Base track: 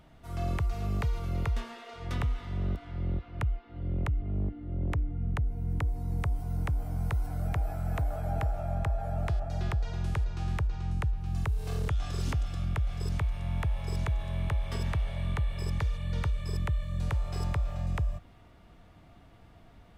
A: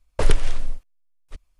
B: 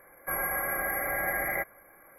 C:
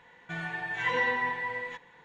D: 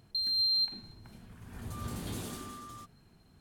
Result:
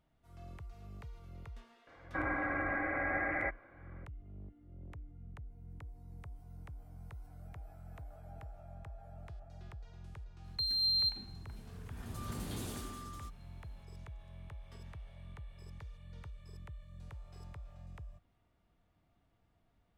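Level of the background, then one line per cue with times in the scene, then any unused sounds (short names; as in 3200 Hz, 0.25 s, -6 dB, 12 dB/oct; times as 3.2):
base track -19 dB
1.87 add B -4.5 dB + careless resampling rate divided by 8×, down none, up filtered
10.44 add D -2.5 dB
not used: A, C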